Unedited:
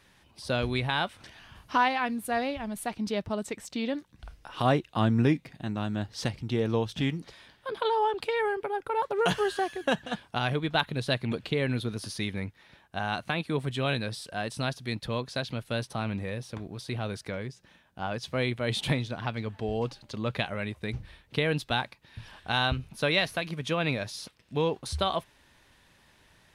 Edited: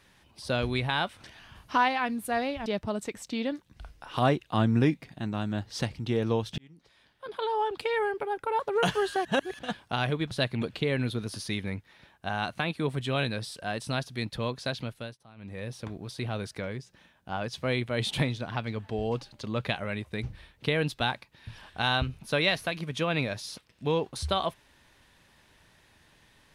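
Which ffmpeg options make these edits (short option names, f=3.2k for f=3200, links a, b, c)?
-filter_complex "[0:a]asplit=8[a][b][c][d][e][f][g][h];[a]atrim=end=2.662[i];[b]atrim=start=3.088:end=7.01,asetpts=PTS-STARTPTS,afade=t=out:st=3.918:d=0.004:c=hsin[j];[c]atrim=start=7.01:end=9.682,asetpts=PTS-STARTPTS,afade=t=in:d=1.32[k];[d]atrim=start=9.678:end=10.022,asetpts=PTS-STARTPTS,areverse[l];[e]atrim=start=10.018:end=10.742[m];[f]atrim=start=11.008:end=15.87,asetpts=PTS-STARTPTS,afade=t=out:st=4.492:d=0.37:silence=0.0841395[n];[g]atrim=start=15.87:end=16.06,asetpts=PTS-STARTPTS,volume=-21.5dB[o];[h]atrim=start=16.06,asetpts=PTS-STARTPTS,afade=t=in:d=0.37:silence=0.0841395[p];[j][k]concat=n=2:v=0:a=1[q];[i][q]acrossfade=d=0.004:c1=hsin:c2=hsin[r];[r][l]acrossfade=d=0.004:c1=hsin:c2=hsin[s];[s][m]acrossfade=d=0.004:c1=hsin:c2=hsin[t];[n][o][p]concat=n=3:v=0:a=1[u];[t][u]acrossfade=d=0.004:c1=hsin:c2=hsin"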